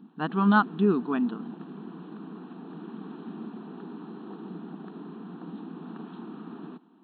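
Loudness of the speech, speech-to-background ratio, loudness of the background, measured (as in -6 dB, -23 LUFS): -25.0 LUFS, 17.0 dB, -42.0 LUFS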